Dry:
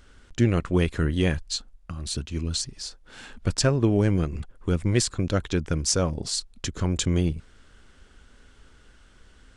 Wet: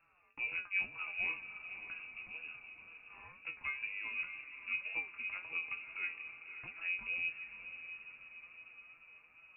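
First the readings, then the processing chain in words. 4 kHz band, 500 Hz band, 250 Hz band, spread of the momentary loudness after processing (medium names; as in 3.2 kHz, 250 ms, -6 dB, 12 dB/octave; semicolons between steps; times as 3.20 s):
-22.0 dB, -35.0 dB, -39.5 dB, 17 LU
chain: high-pass 90 Hz; compression 1.5:1, threshold -38 dBFS, peak gain reduction 8 dB; feedback comb 180 Hz, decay 0.26 s, harmonics all, mix 90%; wow and flutter 94 cents; on a send: echo that smears into a reverb 566 ms, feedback 59%, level -9.5 dB; on the sum: frequency inversion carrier 2.7 kHz; trim -1 dB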